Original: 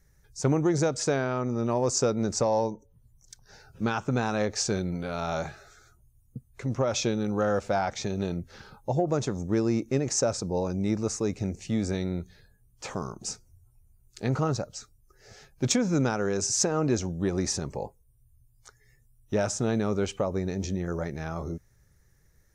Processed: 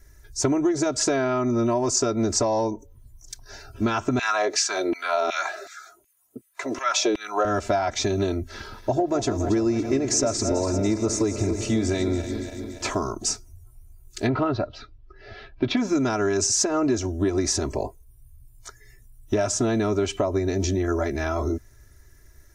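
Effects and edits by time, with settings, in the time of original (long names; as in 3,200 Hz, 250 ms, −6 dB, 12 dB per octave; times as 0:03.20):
0:04.19–0:07.45: auto-filter high-pass saw down 2.7 Hz 290–2,600 Hz
0:08.53–0:12.90: feedback delay that plays each chunk backwards 142 ms, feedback 77%, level −12 dB
0:14.27–0:15.77: Butterworth low-pass 4,000 Hz
whole clip: comb filter 3 ms, depth 100%; downward compressor, threshold −27 dBFS; level +7.5 dB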